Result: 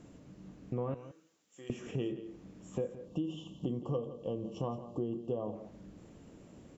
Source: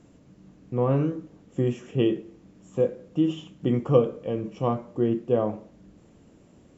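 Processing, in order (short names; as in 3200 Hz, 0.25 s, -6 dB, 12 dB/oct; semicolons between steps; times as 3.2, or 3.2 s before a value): 0.94–1.7 differentiator; 3.06–5.55 spectral gain 1200–2600 Hz -18 dB; compressor 5:1, threshold -34 dBFS, peak gain reduction 18.5 dB; on a send: echo 0.171 s -14 dB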